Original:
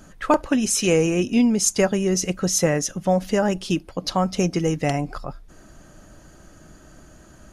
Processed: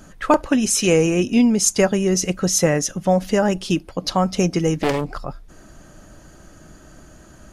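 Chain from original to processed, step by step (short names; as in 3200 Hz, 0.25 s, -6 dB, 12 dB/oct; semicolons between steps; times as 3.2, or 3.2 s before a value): 4.78–5.19 Doppler distortion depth 0.86 ms; gain +2.5 dB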